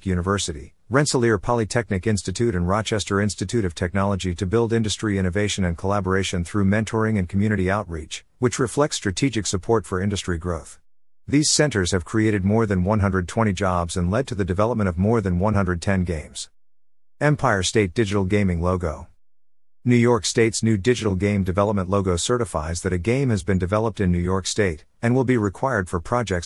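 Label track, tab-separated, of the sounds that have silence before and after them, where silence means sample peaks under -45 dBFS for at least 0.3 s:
11.280000	16.480000	sound
17.200000	19.100000	sound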